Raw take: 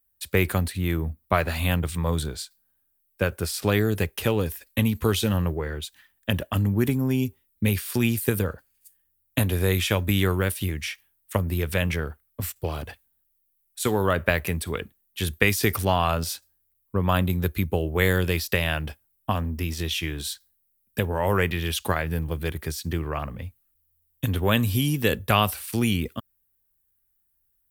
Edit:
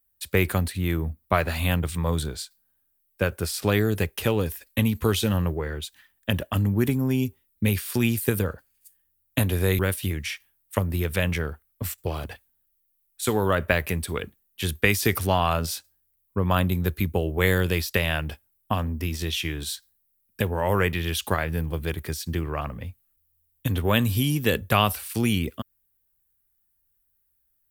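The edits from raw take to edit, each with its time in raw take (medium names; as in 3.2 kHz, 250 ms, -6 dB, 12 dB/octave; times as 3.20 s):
9.79–10.37 s: delete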